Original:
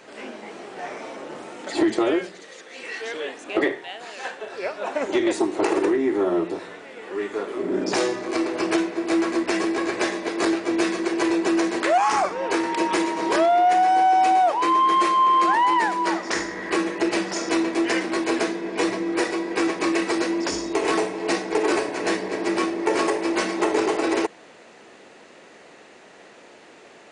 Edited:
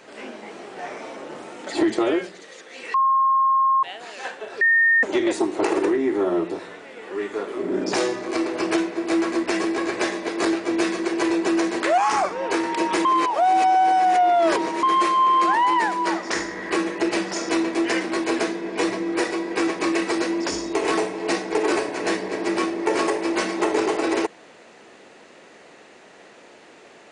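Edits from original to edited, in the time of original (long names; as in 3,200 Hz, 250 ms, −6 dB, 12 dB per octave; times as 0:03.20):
0:02.94–0:03.83: beep over 1,070 Hz −15 dBFS
0:04.61–0:05.03: beep over 1,830 Hz −13.5 dBFS
0:13.05–0:14.83: reverse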